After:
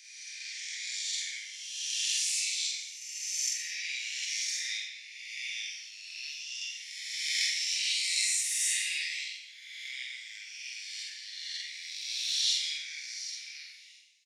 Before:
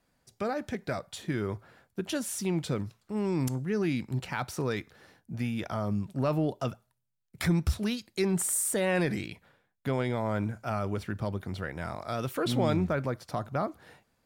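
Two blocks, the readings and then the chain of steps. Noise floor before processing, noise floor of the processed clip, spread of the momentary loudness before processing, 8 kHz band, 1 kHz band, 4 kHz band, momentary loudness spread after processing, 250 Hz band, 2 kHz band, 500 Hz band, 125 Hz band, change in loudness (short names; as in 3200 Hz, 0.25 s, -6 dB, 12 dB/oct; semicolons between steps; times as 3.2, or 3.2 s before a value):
-76 dBFS, -50 dBFS, 10 LU, +6.0 dB, under -40 dB, +12.5 dB, 14 LU, under -40 dB, +3.0 dB, under -40 dB, under -40 dB, -0.5 dB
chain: spectral swells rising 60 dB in 1.90 s; synth low-pass 6100 Hz, resonance Q 3.1; spectral gate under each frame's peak -10 dB weak; steep high-pass 2000 Hz 72 dB/oct; doubler 47 ms -3 dB; non-linear reverb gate 0.32 s falling, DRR -0.5 dB; gain -3.5 dB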